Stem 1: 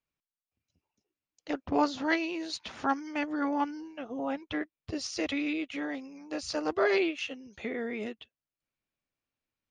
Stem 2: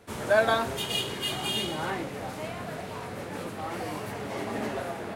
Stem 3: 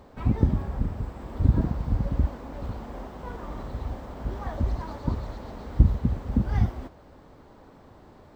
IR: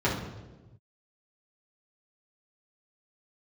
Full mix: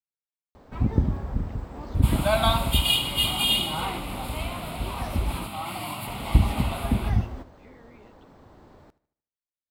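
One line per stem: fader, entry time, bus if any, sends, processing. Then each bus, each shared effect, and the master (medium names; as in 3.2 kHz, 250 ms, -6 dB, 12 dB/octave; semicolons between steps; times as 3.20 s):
-18.5 dB, 0.00 s, no send, no echo send, none
+3.0 dB, 1.95 s, no send, echo send -12 dB, treble shelf 2.7 kHz +9.5 dB; static phaser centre 1.7 kHz, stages 6
-0.5 dB, 0.55 s, muted 5.47–6.07 s, no send, echo send -19.5 dB, none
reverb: none
echo: feedback delay 76 ms, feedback 42%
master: none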